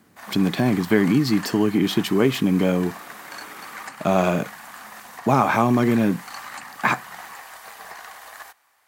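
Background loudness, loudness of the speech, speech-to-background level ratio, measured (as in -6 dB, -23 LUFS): -38.0 LUFS, -21.0 LUFS, 17.0 dB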